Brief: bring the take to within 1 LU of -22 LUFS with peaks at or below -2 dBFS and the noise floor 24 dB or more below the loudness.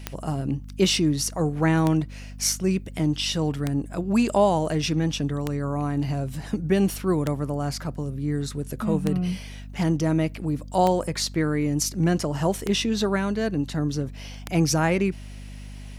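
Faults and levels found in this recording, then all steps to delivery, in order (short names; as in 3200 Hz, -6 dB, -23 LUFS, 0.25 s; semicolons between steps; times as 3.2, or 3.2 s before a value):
clicks 9; hum 50 Hz; harmonics up to 250 Hz; hum level -37 dBFS; loudness -25.0 LUFS; peak -8.5 dBFS; loudness target -22.0 LUFS
-> de-click; de-hum 50 Hz, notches 5; gain +3 dB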